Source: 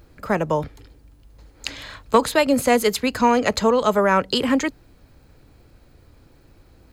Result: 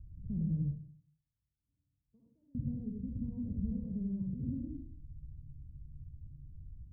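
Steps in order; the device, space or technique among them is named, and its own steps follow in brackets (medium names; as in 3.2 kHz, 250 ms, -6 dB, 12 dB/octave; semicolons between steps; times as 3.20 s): 0.62–2.55 s: differentiator; club heard from the street (peak limiter -13 dBFS, peak gain reduction 6.5 dB; low-pass 150 Hz 24 dB/octave; reverberation RT60 0.55 s, pre-delay 51 ms, DRR -2.5 dB)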